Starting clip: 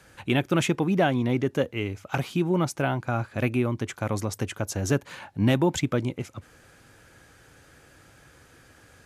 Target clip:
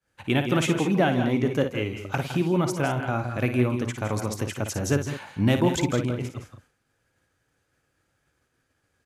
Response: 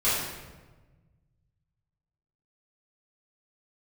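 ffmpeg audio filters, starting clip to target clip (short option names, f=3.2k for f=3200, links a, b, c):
-af "agate=range=-33dB:threshold=-41dB:ratio=3:detection=peak,aecho=1:1:56|160|168|201:0.355|0.266|0.224|0.224"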